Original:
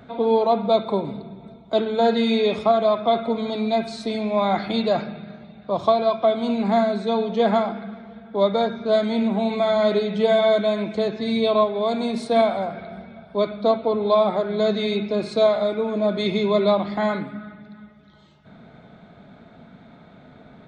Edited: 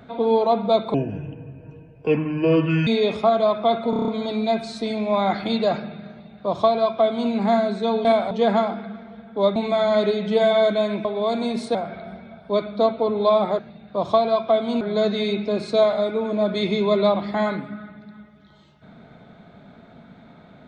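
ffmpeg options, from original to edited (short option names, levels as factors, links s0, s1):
-filter_complex "[0:a]asplit=16[s0][s1][s2][s3][s4][s5][s6][s7][s8][s9][s10][s11][s12][s13][s14][s15];[s0]atrim=end=0.944[s16];[s1]atrim=start=0.94:end=2.29,asetpts=PTS-STARTPTS,asetrate=30870,aresample=44100[s17];[s2]atrim=start=2.286:end=3.352[s18];[s3]atrim=start=3.318:end=3.352[s19];[s4]atrim=start=3.318:end=3.352[s20];[s5]atrim=start=3.318:end=3.352[s21];[s6]atrim=start=3.318:end=3.352[s22];[s7]atrim=start=3.318:end=3.352[s23];[s8]atrim=start=3.318:end=7.292[s24];[s9]atrim=start=12.338:end=12.602[s25];[s10]atrim=start=7.288:end=8.542[s26];[s11]atrim=start=9.438:end=10.932[s27];[s12]atrim=start=11.638:end=12.342[s28];[s13]atrim=start=12.598:end=14.442[s29];[s14]atrim=start=5.328:end=6.552[s30];[s15]atrim=start=14.438[s31];[s16][s17]acrossfade=d=0.004:c1=hsin:c2=hsin[s32];[s32][s18]acrossfade=d=0.004:c1=hsin:c2=hsin[s33];[s33][s19]acrossfade=d=0.004:c1=hsin:c2=hsin[s34];[s34][s20]acrossfade=d=0.004:c1=hsin:c2=hsin[s35];[s35][s21]acrossfade=d=0.004:c1=hsin:c2=hsin[s36];[s36][s22]acrossfade=d=0.004:c1=hsin:c2=hsin[s37];[s37][s23]acrossfade=d=0.004:c1=hsin:c2=hsin[s38];[s38][s24]acrossfade=d=0.004:c1=hsin:c2=hsin[s39];[s39][s25]acrossfade=d=0.004:c1=hsin:c2=hsin[s40];[s40][s26]acrossfade=d=0.004:c1=hsin:c2=hsin[s41];[s41][s27]acrossfade=d=0.004:c1=hsin:c2=hsin[s42];[s42][s28]acrossfade=d=0.004:c1=hsin:c2=hsin[s43];[s43][s29]acrossfade=d=0.004:c1=hsin:c2=hsin[s44];[s44][s30]acrossfade=d=0.004:c1=hsin:c2=hsin[s45];[s45][s31]acrossfade=d=0.004:c1=hsin:c2=hsin"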